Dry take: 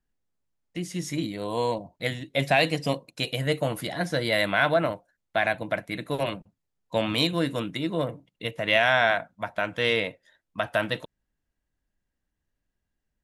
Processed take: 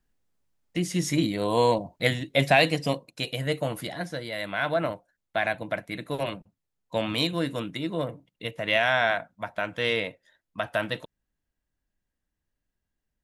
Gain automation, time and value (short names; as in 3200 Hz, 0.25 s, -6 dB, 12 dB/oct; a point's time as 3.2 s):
2.07 s +5 dB
3.2 s -2 dB
3.86 s -2 dB
4.32 s -10 dB
4.84 s -2 dB